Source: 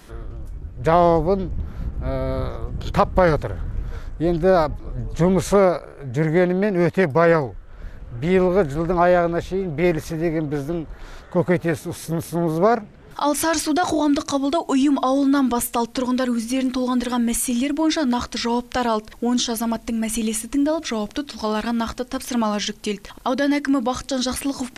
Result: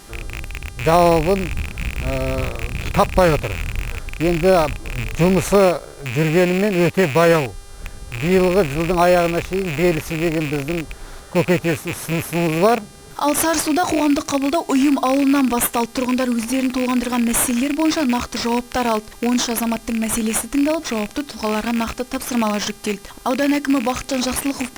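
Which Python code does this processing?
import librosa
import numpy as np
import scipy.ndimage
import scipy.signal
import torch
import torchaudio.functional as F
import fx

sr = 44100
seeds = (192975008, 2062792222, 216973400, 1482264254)

p1 = fx.rattle_buzz(x, sr, strikes_db=-30.0, level_db=-16.0)
p2 = fx.high_shelf(p1, sr, hz=8400.0, db=11.5)
p3 = fx.dmg_buzz(p2, sr, base_hz=400.0, harmonics=29, level_db=-45.0, tilt_db=-1, odd_only=False)
p4 = fx.sample_hold(p3, sr, seeds[0], rate_hz=4800.0, jitter_pct=0)
p5 = p3 + (p4 * 10.0 ** (-6.0 / 20.0))
y = p5 * 10.0 ** (-1.5 / 20.0)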